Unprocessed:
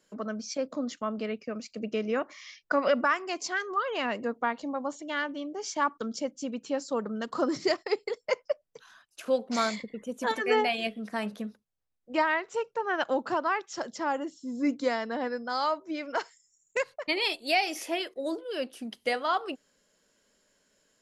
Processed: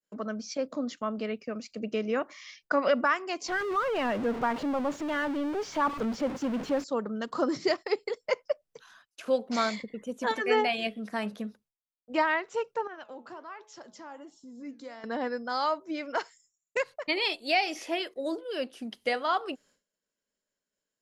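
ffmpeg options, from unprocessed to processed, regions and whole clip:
ffmpeg -i in.wav -filter_complex "[0:a]asettb=1/sr,asplit=3[link_01][link_02][link_03];[link_01]atrim=end=3.484[link_04];[link_02]atrim=start=3.48:end=6.84,asetpts=PTS-STARTPTS,afade=type=in:duration=0.004:curve=qsin,afade=type=out:start_time=3.356:duration=0.004:curve=qsin,aeval=exprs='val(0)+0.5*0.0355*sgn(val(0))':channel_layout=same,lowpass=frequency=1500:poles=1[link_05];[link_03]atrim=start=6.836[link_06];[link_04][link_05]acrossfade=duration=0.004:curve1=hsin:curve2=qsin[link_07];[link_07][link_06]acrossfade=duration=0.004:curve1=qsin:curve2=hsin,asettb=1/sr,asplit=3[link_08][link_09][link_10];[link_08]atrim=end=12.874[link_11];[link_09]atrim=start=12.87:end=15.04,asetpts=PTS-STARTPTS,afade=type=in:duration=0.004:curve=qsin,afade=type=out:start_time=2.166:duration=0.004:curve=qsin,acompressor=threshold=-44dB:ratio=2:attack=3.2:release=140:knee=1:detection=peak,bandreject=frequency=214.1:width_type=h:width=4,bandreject=frequency=428.2:width_type=h:width=4,bandreject=frequency=642.3:width_type=h:width=4,bandreject=frequency=856.4:width_type=h:width=4,bandreject=frequency=1070.5:width_type=h:width=4,bandreject=frequency=1284.6:width_type=h:width=4,flanger=delay=4.2:depth=9:regen=81:speed=1.3:shape=triangular[link_12];[link_10]atrim=start=15.036[link_13];[link_11][link_12]acrossfade=duration=0.004:curve1=hsin:curve2=qsin[link_14];[link_14][link_13]acrossfade=duration=0.004:curve1=qsin:curve2=hsin,acrossover=split=6700[link_15][link_16];[link_16]acompressor=threshold=-58dB:ratio=4:attack=1:release=60[link_17];[link_15][link_17]amix=inputs=2:normalize=0,agate=range=-33dB:threshold=-57dB:ratio=3:detection=peak" out.wav

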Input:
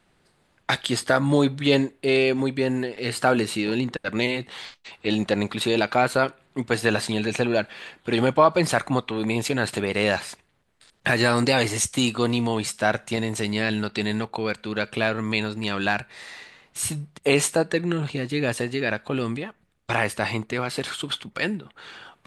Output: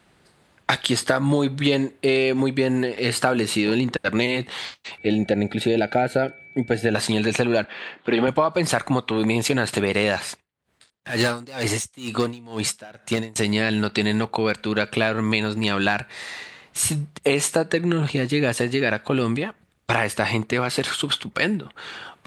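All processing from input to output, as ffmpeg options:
ffmpeg -i in.wav -filter_complex "[0:a]asettb=1/sr,asplit=3[link_01][link_02][link_03];[link_01]atrim=end=4.984[link_04];[link_02]atrim=start=4.98:end=6.95,asetpts=PTS-STARTPTS,afade=type=in:duration=0.004:curve=qsin,afade=type=out:start_time=1.966:duration=0.004:curve=qsin,asuperstop=centerf=1100:order=4:qfactor=2,highshelf=frequency=2200:gain=-11.5,aeval=exprs='val(0)+0.00355*sin(2*PI*2300*n/s)':channel_layout=same[link_05];[link_03]atrim=start=6.946[link_06];[link_04][link_05]acrossfade=duration=0.004:curve1=hsin:curve2=qsin[link_07];[link_07][link_06]acrossfade=duration=0.004:curve1=qsin:curve2=hsin,asettb=1/sr,asplit=3[link_08][link_09][link_10];[link_08]atrim=end=7.644[link_11];[link_09]atrim=start=7.64:end=8.28,asetpts=PTS-STARTPTS,afade=type=in:duration=0.004:curve=qsin,afade=type=out:start_time=0.636:duration=0.004:curve=qsin,highpass=190,lowpass=3300,asplit=2[link_12][link_13];[link_13]adelay=40,volume=-14dB[link_14];[link_12][link_14]amix=inputs=2:normalize=0,atrim=end_sample=28224[link_15];[link_10]atrim=start=8.276[link_16];[link_11][link_15]acrossfade=duration=0.004:curve1=hsin:curve2=qsin[link_17];[link_17][link_16]acrossfade=duration=0.004:curve1=qsin:curve2=hsin,asettb=1/sr,asplit=3[link_18][link_19][link_20];[link_18]atrim=end=10.284[link_21];[link_19]atrim=start=10.28:end=13.36,asetpts=PTS-STARTPTS,afade=type=in:duration=0.004:curve=qsin,afade=type=out:start_time=3.076:duration=0.004:curve=qsin,asoftclip=type=hard:threshold=-16.5dB,aeval=exprs='val(0)*pow(10,-26*(0.5-0.5*cos(2*PI*2.1*n/s))/20)':channel_layout=same[link_22];[link_20]atrim=start=13.356[link_23];[link_21][link_22]acrossfade=duration=0.004:curve1=hsin:curve2=qsin[link_24];[link_24][link_23]acrossfade=duration=0.004:curve1=qsin:curve2=hsin,highpass=47,acompressor=threshold=-22dB:ratio=6,volume=6dB" out.wav

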